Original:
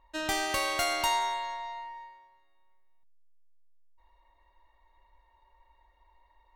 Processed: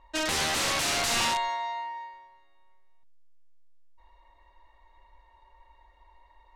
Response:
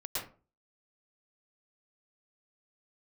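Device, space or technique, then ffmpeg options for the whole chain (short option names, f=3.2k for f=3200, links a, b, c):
overflowing digital effects unit: -filter_complex "[0:a]asettb=1/sr,asplit=3[a][b][c];[a]atrim=end=1.484[d];[b]atrim=start=1.48:end=2.14,asetpts=PTS-STARTPTS,afade=t=in:d=0.004:c=qsin,afade=t=out:st=0.656:d=0.004:c=qsin,highpass=100[e];[c]atrim=start=2.136[f];[d][e]acrossfade=d=0.004:c1=hsin:c2=qsin[g];[g][f]acrossfade=d=0.004:c1=qsin:c2=hsin,aeval=exprs='(mod(21.1*val(0)+1,2)-1)/21.1':c=same,lowpass=8k,volume=6dB"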